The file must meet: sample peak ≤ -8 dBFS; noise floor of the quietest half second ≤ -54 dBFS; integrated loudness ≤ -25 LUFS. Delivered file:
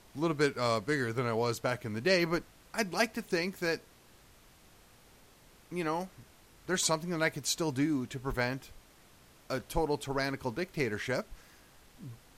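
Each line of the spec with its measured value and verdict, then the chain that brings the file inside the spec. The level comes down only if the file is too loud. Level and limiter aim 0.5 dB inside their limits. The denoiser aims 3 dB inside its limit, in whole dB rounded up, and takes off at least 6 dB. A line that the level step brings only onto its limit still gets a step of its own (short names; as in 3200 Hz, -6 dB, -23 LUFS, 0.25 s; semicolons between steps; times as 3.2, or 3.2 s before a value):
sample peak -14.5 dBFS: OK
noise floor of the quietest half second -59 dBFS: OK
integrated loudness -32.5 LUFS: OK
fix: none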